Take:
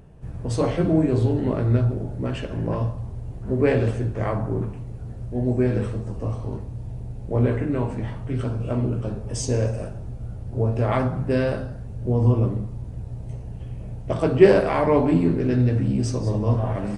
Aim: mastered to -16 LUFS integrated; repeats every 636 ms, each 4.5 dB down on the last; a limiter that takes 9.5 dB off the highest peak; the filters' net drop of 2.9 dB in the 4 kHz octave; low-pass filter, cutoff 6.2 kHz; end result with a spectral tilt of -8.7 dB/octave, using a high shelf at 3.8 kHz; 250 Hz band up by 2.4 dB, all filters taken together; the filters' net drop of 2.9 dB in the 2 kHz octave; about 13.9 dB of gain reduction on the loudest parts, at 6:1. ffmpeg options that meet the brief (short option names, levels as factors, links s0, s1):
-af "lowpass=6200,equalizer=f=250:t=o:g=3,equalizer=f=2000:t=o:g=-4,highshelf=f=3800:g=9,equalizer=f=4000:t=o:g=-8.5,acompressor=threshold=0.0891:ratio=6,alimiter=limit=0.0944:level=0:latency=1,aecho=1:1:636|1272|1908|2544|3180|3816|4452|5088|5724:0.596|0.357|0.214|0.129|0.0772|0.0463|0.0278|0.0167|0.01,volume=4.22"